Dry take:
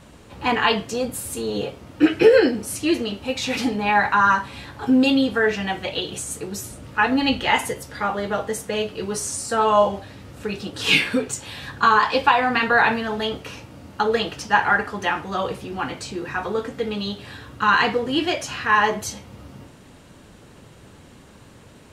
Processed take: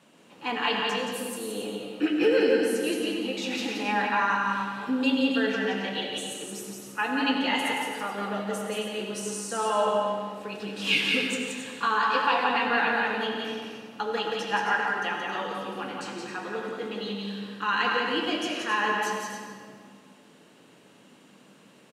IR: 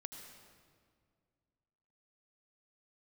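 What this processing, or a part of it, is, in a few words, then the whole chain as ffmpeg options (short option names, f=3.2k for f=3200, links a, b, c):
stadium PA: -filter_complex "[0:a]highpass=f=180:w=0.5412,highpass=f=180:w=1.3066,equalizer=f=2.8k:t=o:w=0.41:g=5,aecho=1:1:174.9|271.1:0.631|0.355[a];[1:a]atrim=start_sample=2205[b];[a][b]afir=irnorm=-1:irlink=0,volume=-5dB"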